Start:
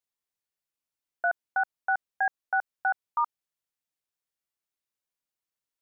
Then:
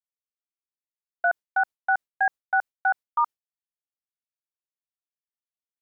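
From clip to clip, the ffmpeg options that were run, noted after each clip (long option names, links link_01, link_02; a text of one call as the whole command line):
ffmpeg -i in.wav -af "agate=range=-33dB:threshold=-32dB:ratio=3:detection=peak,volume=4dB" out.wav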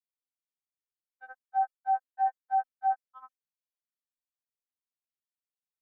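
ffmpeg -i in.wav -af "afftfilt=real='re*3.46*eq(mod(b,12),0)':imag='im*3.46*eq(mod(b,12),0)':win_size=2048:overlap=0.75,volume=-8dB" out.wav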